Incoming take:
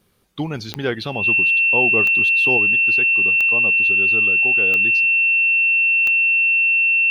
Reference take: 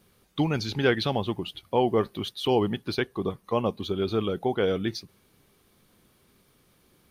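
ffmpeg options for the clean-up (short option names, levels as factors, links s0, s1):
-af "adeclick=t=4,bandreject=f=2700:w=30,asetnsamples=n=441:p=0,asendcmd='2.57 volume volume 5.5dB',volume=1"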